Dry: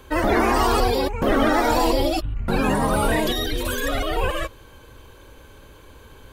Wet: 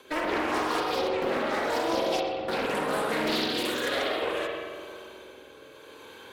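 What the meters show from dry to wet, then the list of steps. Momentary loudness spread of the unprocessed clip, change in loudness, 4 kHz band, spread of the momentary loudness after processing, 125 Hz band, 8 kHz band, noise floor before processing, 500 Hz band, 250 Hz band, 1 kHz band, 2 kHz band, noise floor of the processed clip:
7 LU, −6.5 dB, −3.0 dB, 18 LU, −17.5 dB, −9.0 dB, −47 dBFS, −5.5 dB, −9.0 dB, −7.0 dB, −4.5 dB, −49 dBFS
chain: high-pass filter 340 Hz 12 dB per octave
parametric band 3,400 Hz +5.5 dB 1.1 octaves
notch filter 3,000 Hz, Q 14
downward compressor, threshold −26 dBFS, peak gain reduction 10.5 dB
rotating-speaker cabinet horn 5 Hz, later 0.8 Hz, at 0:03.27
asymmetric clip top −27 dBFS
feedback echo with a low-pass in the loop 122 ms, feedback 75%, low-pass 1,500 Hz, level −6 dB
spring reverb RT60 1.2 s, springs 45 ms, chirp 45 ms, DRR −1 dB
highs frequency-modulated by the lows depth 0.32 ms

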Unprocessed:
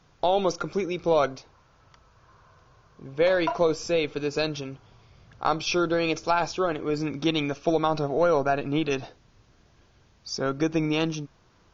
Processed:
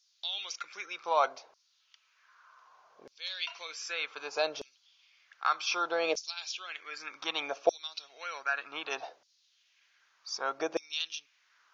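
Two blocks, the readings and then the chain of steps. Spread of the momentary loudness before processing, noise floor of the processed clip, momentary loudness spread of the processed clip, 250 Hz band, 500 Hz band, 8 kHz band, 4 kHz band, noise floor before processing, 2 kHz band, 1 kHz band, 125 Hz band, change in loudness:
8 LU, −71 dBFS, 11 LU, −20.5 dB, −11.5 dB, can't be measured, −2.0 dB, −60 dBFS, −3.0 dB, −6.5 dB, below −35 dB, −8.5 dB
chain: auto-filter high-pass saw down 0.65 Hz 550–5,200 Hz
level −4.5 dB

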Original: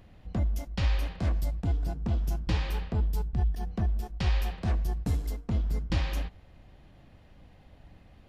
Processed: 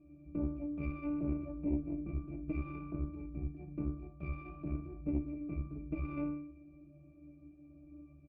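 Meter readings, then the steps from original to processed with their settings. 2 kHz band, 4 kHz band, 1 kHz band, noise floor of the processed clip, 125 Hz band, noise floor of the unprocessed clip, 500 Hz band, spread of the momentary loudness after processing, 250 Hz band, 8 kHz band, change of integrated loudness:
−12.0 dB, below −35 dB, −11.5 dB, −58 dBFS, −12.0 dB, −55 dBFS, −5.0 dB, 20 LU, +1.0 dB, below −30 dB, −8.5 dB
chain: stylus tracing distortion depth 0.19 ms
on a send: ambience of single reflections 47 ms −8.5 dB, 76 ms −17 dB
on the sum: four-comb reverb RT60 2.2 s, combs from 30 ms, DRR 19 dB
brickwall limiter −23.5 dBFS, peak gain reduction 8 dB
high-shelf EQ 3,200 Hz −10 dB
mains-hum notches 50/100/150/200/250/300 Hz
resonances in every octave D, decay 0.68 s
hollow resonant body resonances 320/2,400 Hz, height 17 dB, ringing for 25 ms
tube saturation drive 34 dB, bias 0.65
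parametric band 88 Hz −14 dB 0.33 octaves
level +12 dB

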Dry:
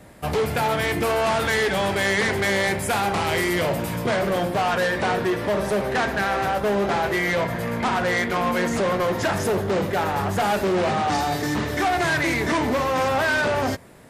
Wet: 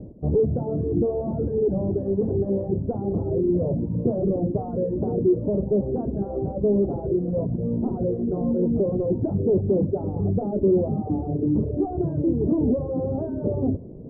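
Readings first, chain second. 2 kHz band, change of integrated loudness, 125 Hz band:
below −40 dB, −2.0 dB, +3.5 dB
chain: reverb reduction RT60 0.91 s
inverse Chebyshev low-pass filter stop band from 2,000 Hz, stop band 70 dB
reversed playback
upward compression, threshold −30 dBFS
reversed playback
level +6 dB

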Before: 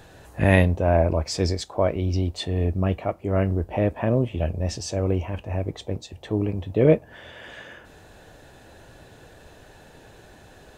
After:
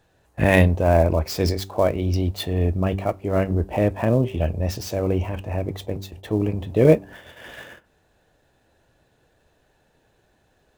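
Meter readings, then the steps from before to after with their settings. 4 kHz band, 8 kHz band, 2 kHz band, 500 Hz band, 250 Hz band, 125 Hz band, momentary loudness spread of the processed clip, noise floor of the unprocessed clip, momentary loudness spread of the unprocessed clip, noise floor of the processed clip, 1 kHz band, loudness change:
+0.5 dB, −1.0 dB, +2.5 dB, +2.5 dB, +2.0 dB, +1.5 dB, 14 LU, −50 dBFS, 18 LU, −64 dBFS, +2.5 dB, +2.0 dB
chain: gap after every zero crossing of 0.053 ms
noise gate −42 dBFS, range −17 dB
hum removal 97.06 Hz, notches 4
level +2.5 dB

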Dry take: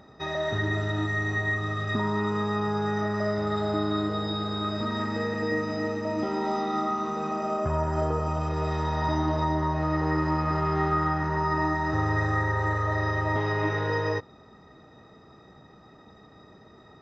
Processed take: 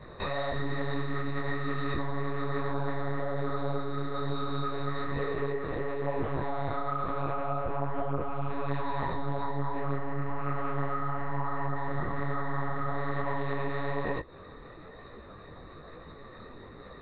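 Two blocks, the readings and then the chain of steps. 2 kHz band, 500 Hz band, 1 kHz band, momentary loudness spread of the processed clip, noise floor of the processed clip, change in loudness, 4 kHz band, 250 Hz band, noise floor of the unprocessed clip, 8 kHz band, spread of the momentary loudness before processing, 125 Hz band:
−8.0 dB, −4.5 dB, −5.5 dB, 16 LU, −48 dBFS, −6.0 dB, −9.0 dB, −7.5 dB, −53 dBFS, can't be measured, 4 LU, −6.0 dB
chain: downward compressor, threshold −34 dBFS, peak gain reduction 12.5 dB
one-pitch LPC vocoder at 8 kHz 140 Hz
micro pitch shift up and down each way 39 cents
level +8.5 dB

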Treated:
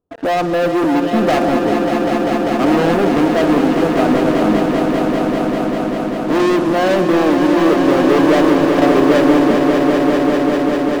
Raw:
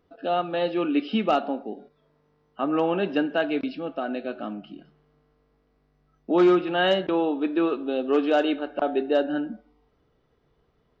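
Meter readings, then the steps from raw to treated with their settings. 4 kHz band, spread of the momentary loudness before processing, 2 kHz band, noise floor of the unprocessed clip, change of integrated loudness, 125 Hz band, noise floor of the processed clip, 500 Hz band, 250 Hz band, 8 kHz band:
+8.0 dB, 12 LU, +11.5 dB, −68 dBFS, +10.5 dB, +17.0 dB, −20 dBFS, +11.5 dB, +13.5 dB, can't be measured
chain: moving average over 21 samples
leveller curve on the samples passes 5
echo that builds up and dies away 197 ms, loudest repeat 5, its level −7.5 dB

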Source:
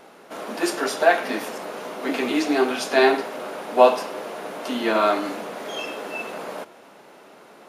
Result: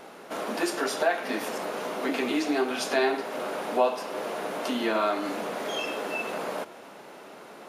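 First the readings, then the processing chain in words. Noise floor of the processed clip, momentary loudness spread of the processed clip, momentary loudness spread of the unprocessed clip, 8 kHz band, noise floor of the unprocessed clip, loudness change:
−46 dBFS, 12 LU, 16 LU, −3.0 dB, −48 dBFS, −6.0 dB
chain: downward compressor 2 to 1, threshold −31 dBFS, peak gain reduction 12.5 dB
level +2 dB

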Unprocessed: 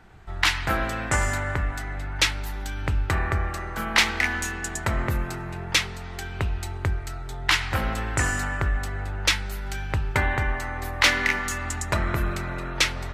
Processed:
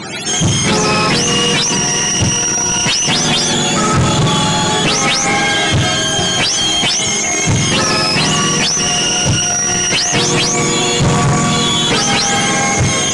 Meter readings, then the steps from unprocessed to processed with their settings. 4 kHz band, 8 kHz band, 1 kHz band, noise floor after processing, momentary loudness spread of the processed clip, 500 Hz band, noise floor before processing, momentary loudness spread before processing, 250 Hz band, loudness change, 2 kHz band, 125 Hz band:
+16.5 dB, +21.0 dB, +13.0 dB, −15 dBFS, 1 LU, +15.5 dB, −35 dBFS, 11 LU, +18.0 dB, +13.5 dB, +8.5 dB, +11.5 dB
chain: frequency axis turned over on the octave scale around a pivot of 530 Hz
mid-hump overdrive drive 46 dB, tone 5,300 Hz, clips at −2 dBFS
level −3 dB
AAC 96 kbit/s 22,050 Hz

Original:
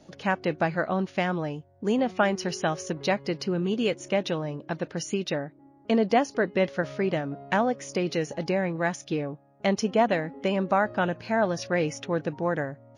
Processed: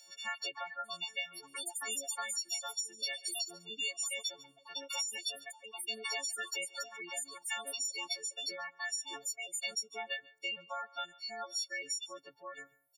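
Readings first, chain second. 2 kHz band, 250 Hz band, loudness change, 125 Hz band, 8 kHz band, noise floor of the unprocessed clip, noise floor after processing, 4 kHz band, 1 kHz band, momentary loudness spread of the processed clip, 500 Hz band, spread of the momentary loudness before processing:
−8.5 dB, −32.5 dB, −10.0 dB, below −35 dB, +4.5 dB, −56 dBFS, −66 dBFS, +1.0 dB, −16.0 dB, 7 LU, −23.5 dB, 8 LU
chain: every partial snapped to a pitch grid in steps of 4 semitones
first difference
noise reduction from a noise print of the clip's start 11 dB
delay with pitch and tempo change per echo 84 ms, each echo +4 semitones, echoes 2, each echo −6 dB
single-tap delay 139 ms −13 dB
reverb reduction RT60 0.83 s
low-shelf EQ 180 Hz −7 dB
downward compressor 6 to 1, threshold −35 dBFS, peak gain reduction 11.5 dB
gate on every frequency bin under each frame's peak −30 dB strong
multiband upward and downward compressor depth 40%
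level +1.5 dB

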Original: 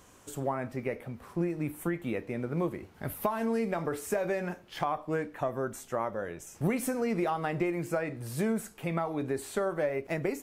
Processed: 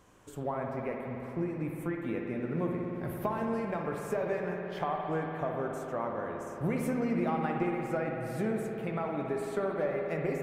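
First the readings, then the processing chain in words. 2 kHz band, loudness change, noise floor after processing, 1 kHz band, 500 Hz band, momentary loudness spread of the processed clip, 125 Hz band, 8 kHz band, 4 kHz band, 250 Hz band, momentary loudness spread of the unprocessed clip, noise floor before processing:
−2.0 dB, −1.0 dB, −42 dBFS, −0.5 dB, −1.0 dB, 5 LU, −0.5 dB, −10.0 dB, −5.5 dB, −0.5 dB, 6 LU, −57 dBFS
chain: high-shelf EQ 3,700 Hz −8.5 dB
spring reverb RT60 3.6 s, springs 56 ms, chirp 45 ms, DRR 0.5 dB
level −3 dB

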